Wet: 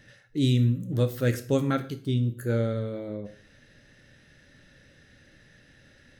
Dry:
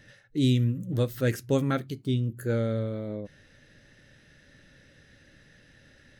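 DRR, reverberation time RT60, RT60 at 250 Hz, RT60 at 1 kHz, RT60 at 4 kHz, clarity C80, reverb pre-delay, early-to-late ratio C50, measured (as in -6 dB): 9.0 dB, 0.45 s, 0.45 s, 0.45 s, 0.45 s, 18.0 dB, 19 ms, 14.0 dB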